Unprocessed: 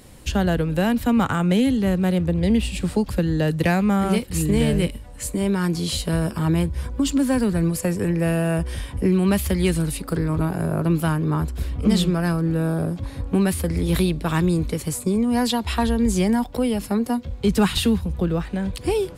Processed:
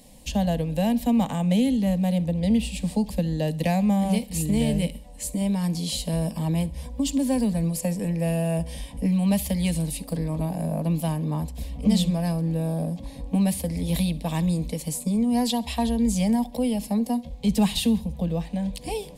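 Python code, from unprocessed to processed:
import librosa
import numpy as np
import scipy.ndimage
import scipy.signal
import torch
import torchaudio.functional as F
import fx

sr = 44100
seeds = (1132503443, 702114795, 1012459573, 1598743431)

y = fx.fixed_phaser(x, sr, hz=370.0, stages=6)
y = fx.echo_feedback(y, sr, ms=67, feedback_pct=45, wet_db=-21.5)
y = y * librosa.db_to_amplitude(-1.5)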